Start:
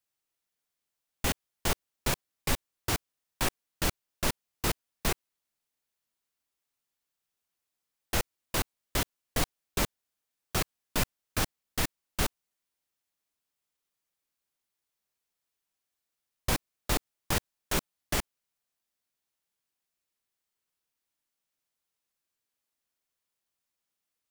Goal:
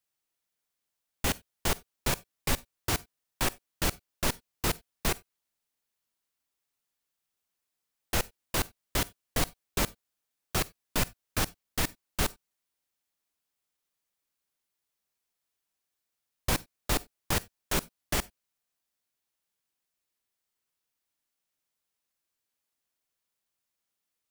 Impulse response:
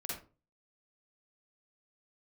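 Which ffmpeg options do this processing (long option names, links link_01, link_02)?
-filter_complex "[0:a]asplit=2[link_01][link_02];[1:a]atrim=start_sample=2205,atrim=end_sample=4410,highshelf=frequency=5000:gain=11[link_03];[link_02][link_03]afir=irnorm=-1:irlink=0,volume=-22.5dB[link_04];[link_01][link_04]amix=inputs=2:normalize=0"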